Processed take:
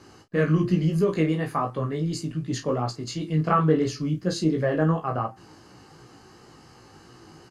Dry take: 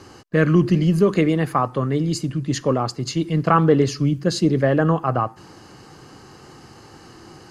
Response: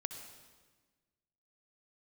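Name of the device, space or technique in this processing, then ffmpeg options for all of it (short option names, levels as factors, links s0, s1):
double-tracked vocal: -filter_complex "[0:a]asplit=2[s0][s1];[s1]adelay=32,volume=0.355[s2];[s0][s2]amix=inputs=2:normalize=0,flanger=delay=16.5:depth=2.5:speed=2.8,volume=0.668"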